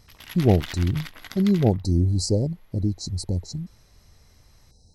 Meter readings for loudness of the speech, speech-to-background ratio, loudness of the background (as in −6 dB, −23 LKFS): −24.0 LKFS, 15.0 dB, −39.0 LKFS